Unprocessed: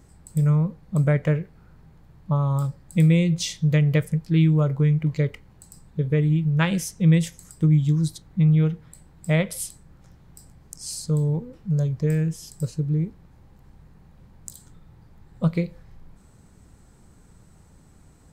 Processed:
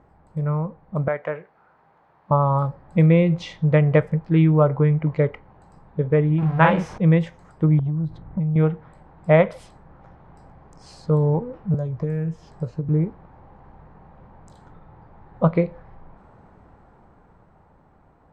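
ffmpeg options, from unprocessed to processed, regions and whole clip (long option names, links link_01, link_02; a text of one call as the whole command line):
ffmpeg -i in.wav -filter_complex "[0:a]asettb=1/sr,asplit=3[link_01][link_02][link_03];[link_01]atrim=end=1.084[link_04];[link_02]atrim=start=1.08:end=2.31,asetpts=PTS-STARTPTS,afade=type=in:duration=0.004:curve=qsin,afade=type=out:start_time=1.226:duration=0.004:curve=qsin,highpass=frequency=850:poles=1,highshelf=frequency=8800:gain=11[link_05];[link_03]atrim=start=2.306[link_06];[link_04][link_05]acrossfade=duration=0.004:curve1=hsin:curve2=qsin[link_07];[link_07][link_06]acrossfade=duration=0.004:curve1=qsin:curve2=hsin,asettb=1/sr,asplit=3[link_08][link_09][link_10];[link_08]atrim=end=6.384[link_11];[link_09]atrim=start=6.38:end=6.98,asetpts=PTS-STARTPTS,afade=type=in:duration=0.004:curve=qsin,afade=type=out:start_time=0.596:duration=0.004:curve=qsin,aeval=exprs='val(0)+0.5*0.02*sgn(val(0))':channel_layout=same,asplit=2[link_12][link_13];[link_13]adelay=44,volume=-3.5dB[link_14];[link_12][link_14]amix=inputs=2:normalize=0,atrim=end_sample=26460[link_15];[link_10]atrim=start=6.976[link_16];[link_11][link_15]acrossfade=duration=0.004:curve1=hsin:curve2=qsin[link_17];[link_17][link_16]acrossfade=duration=0.004:curve1=qsin:curve2=hsin,asettb=1/sr,asplit=3[link_18][link_19][link_20];[link_18]atrim=end=7.794[link_21];[link_19]atrim=start=7.79:end=8.56,asetpts=PTS-STARTPTS,afade=type=in:duration=0.004:curve=qsin,afade=type=out:start_time=0.766:duration=0.004:curve=qsin,bass=frequency=250:gain=11,treble=frequency=4000:gain=-12,acompressor=threshold=-22dB:ratio=8:attack=3.2:release=140:knee=1:detection=peak[link_22];[link_20]atrim=start=8.556[link_23];[link_21][link_22]acrossfade=duration=0.004:curve1=hsin:curve2=qsin[link_24];[link_24][link_23]acrossfade=duration=0.004:curve1=qsin:curve2=hsin,asettb=1/sr,asplit=3[link_25][link_26][link_27];[link_25]atrim=end=11.744[link_28];[link_26]atrim=start=11.74:end=12.89,asetpts=PTS-STARTPTS,afade=type=in:duration=0.004:curve=qsin,afade=type=out:start_time=1.146:duration=0.004:curve=qsin,acrossover=split=220|4800[link_29][link_30][link_31];[link_29]acompressor=threshold=-26dB:ratio=4[link_32];[link_30]acompressor=threshold=-41dB:ratio=4[link_33];[link_31]acompressor=threshold=-49dB:ratio=4[link_34];[link_32][link_33][link_34]amix=inputs=3:normalize=0,equalizer=frequency=6700:width_type=o:width=0.53:gain=3.5,asplit=2[link_35][link_36];[link_36]adelay=17,volume=-12.5dB[link_37];[link_35][link_37]amix=inputs=2:normalize=0,atrim=end_sample=50715[link_38];[link_27]atrim=start=12.886[link_39];[link_28][link_38]acrossfade=duration=0.004:curve1=hsin:curve2=qsin[link_40];[link_40][link_39]acrossfade=duration=0.004:curve1=qsin:curve2=hsin,lowpass=2300,dynaudnorm=framelen=200:gausssize=17:maxgain=7.5dB,equalizer=frequency=810:width_type=o:width=2.1:gain=14.5,volume=-6.5dB" out.wav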